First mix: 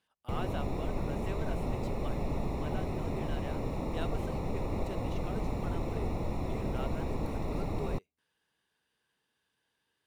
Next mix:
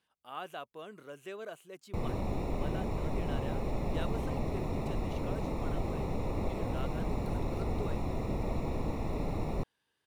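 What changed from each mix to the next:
background: entry +1.65 s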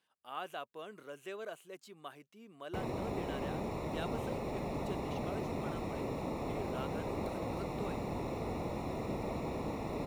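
background: entry +0.80 s; master: add HPF 200 Hz 6 dB/oct

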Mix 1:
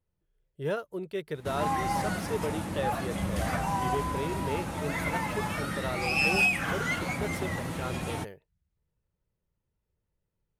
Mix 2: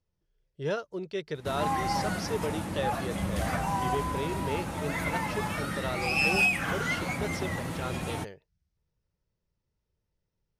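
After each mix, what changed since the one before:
speech: add synth low-pass 5500 Hz, resonance Q 3.2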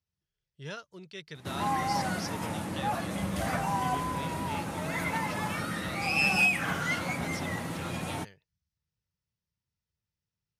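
speech: add bell 460 Hz -14.5 dB 2.5 oct; master: add HPF 98 Hz 12 dB/oct

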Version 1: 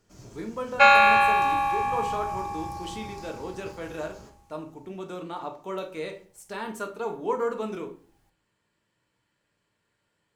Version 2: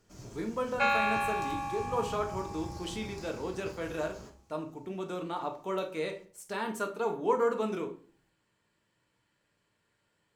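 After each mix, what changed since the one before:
second sound -11.5 dB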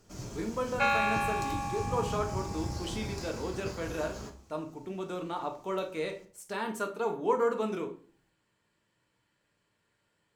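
first sound +7.0 dB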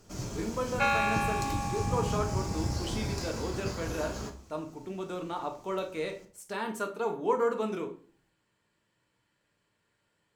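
first sound +4.5 dB

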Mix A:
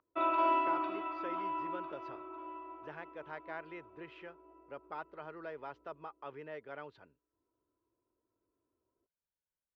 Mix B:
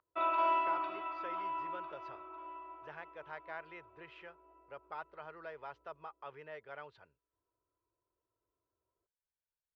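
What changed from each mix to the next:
master: add bell 260 Hz -13 dB 1.1 oct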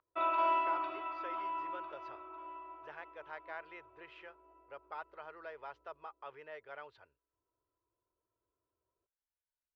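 speech: add bell 170 Hz -11.5 dB 0.89 oct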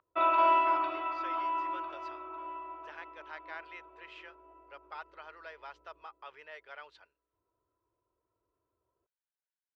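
speech: add tilt +4 dB/oct; background +6.0 dB

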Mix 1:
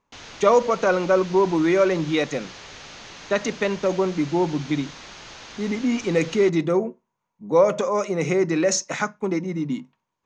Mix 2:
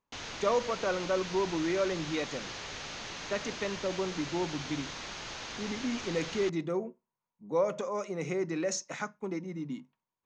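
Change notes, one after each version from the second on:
speech -11.5 dB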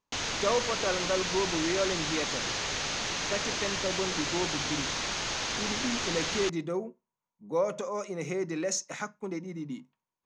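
background +7.5 dB; master: remove air absorption 57 m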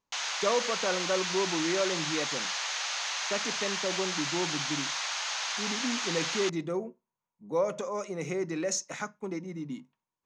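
background: add HPF 730 Hz 24 dB/oct

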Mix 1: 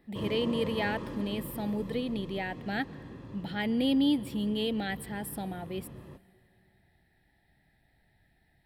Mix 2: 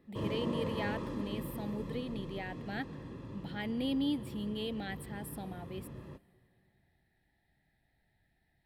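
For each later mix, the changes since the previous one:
speech -7.0 dB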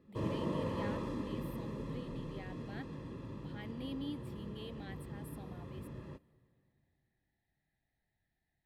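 speech -10.0 dB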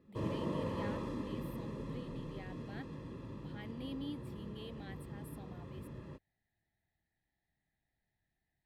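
reverb: off

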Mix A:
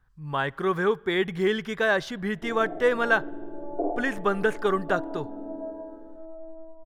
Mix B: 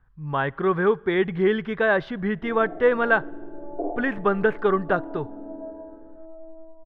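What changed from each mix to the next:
speech +4.5 dB; master: add air absorption 400 m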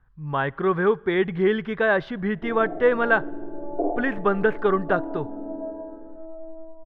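background +4.0 dB

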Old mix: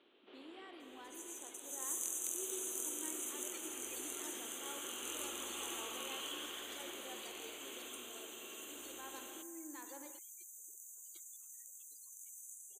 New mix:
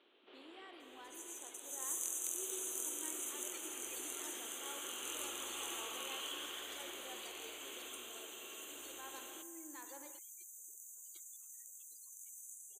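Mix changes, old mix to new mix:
first sound: send on; master: add bell 160 Hz -8.5 dB 1.7 oct

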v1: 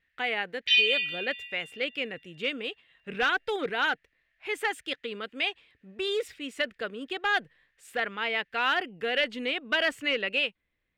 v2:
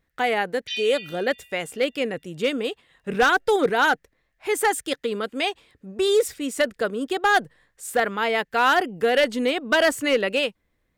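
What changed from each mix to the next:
speech +11.0 dB; master: add EQ curve 960 Hz 0 dB, 2700 Hz -11 dB, 6200 Hz +4 dB, 9800 Hz +8 dB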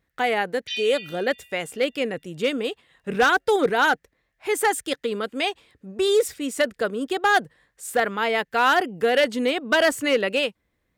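master: add HPF 40 Hz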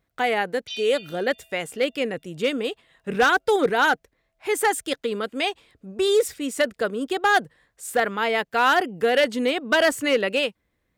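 background: remove resonant high-pass 1800 Hz, resonance Q 14

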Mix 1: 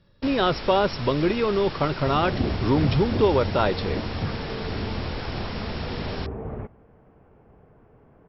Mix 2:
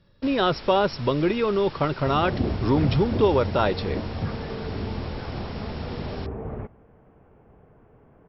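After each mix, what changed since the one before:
first sound -6.0 dB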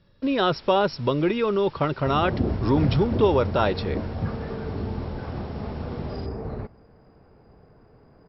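first sound -8.5 dB; second sound: remove Chebyshev low-pass 3300 Hz, order 6

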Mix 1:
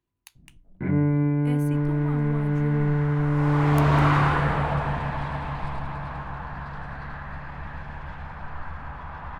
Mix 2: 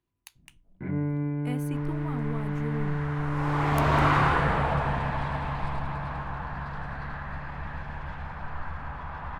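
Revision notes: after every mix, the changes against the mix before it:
first sound -7.0 dB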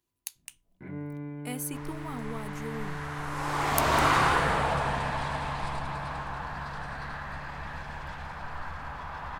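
first sound -6.0 dB; master: add tone controls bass -5 dB, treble +14 dB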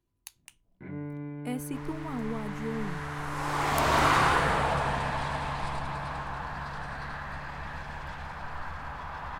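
speech: add tilt -2.5 dB/oct

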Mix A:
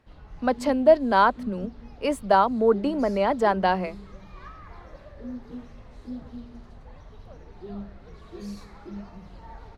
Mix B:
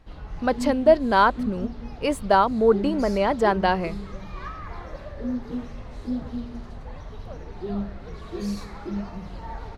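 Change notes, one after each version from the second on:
speech: remove rippled Chebyshev high-pass 180 Hz, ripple 3 dB; background +8.0 dB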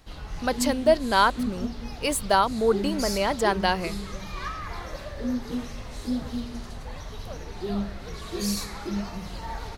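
speech -4.5 dB; master: remove LPF 1300 Hz 6 dB/oct

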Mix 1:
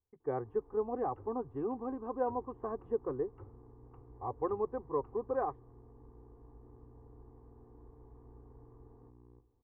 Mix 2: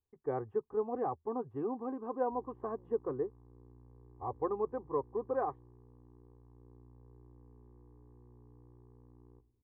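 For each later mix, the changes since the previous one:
first sound: muted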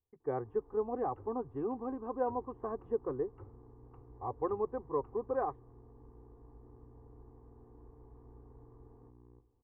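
first sound: unmuted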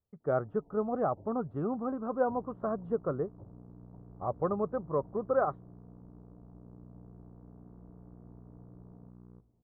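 first sound: add rippled Chebyshev low-pass 970 Hz, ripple 6 dB; master: remove fixed phaser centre 910 Hz, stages 8

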